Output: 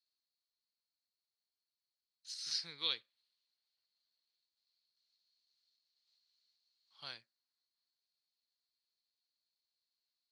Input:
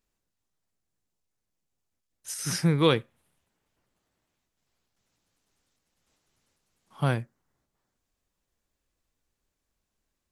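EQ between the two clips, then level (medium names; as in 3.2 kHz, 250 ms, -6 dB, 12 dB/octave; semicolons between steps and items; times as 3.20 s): band-pass filter 4.3 kHz, Q 14; distance through air 52 m; +12.0 dB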